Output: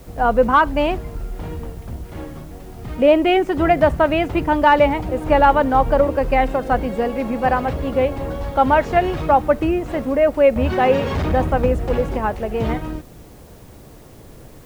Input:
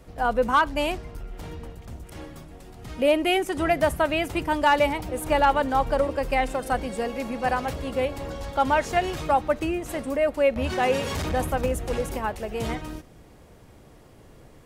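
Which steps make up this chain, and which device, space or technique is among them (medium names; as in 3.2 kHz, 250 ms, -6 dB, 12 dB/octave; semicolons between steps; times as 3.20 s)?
cassette deck with a dirty head (tape spacing loss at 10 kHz 27 dB; wow and flutter 23 cents; white noise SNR 35 dB); trim +9 dB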